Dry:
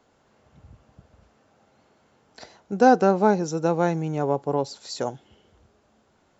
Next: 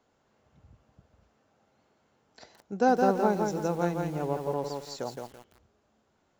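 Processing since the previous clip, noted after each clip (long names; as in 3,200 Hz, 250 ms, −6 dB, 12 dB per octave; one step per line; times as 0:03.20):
feedback echo at a low word length 167 ms, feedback 35%, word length 7 bits, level −4 dB
level −7.5 dB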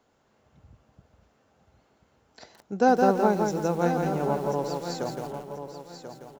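repeating echo 1,037 ms, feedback 25%, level −10 dB
level +3 dB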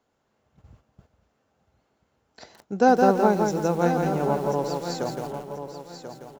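noise gate −56 dBFS, range −8 dB
level +2.5 dB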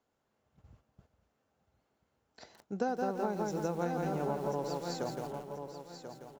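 downward compressor 10 to 1, threshold −21 dBFS, peak gain reduction 10 dB
level −7.5 dB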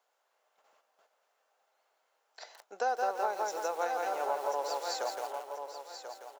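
high-pass filter 570 Hz 24 dB per octave
level +6 dB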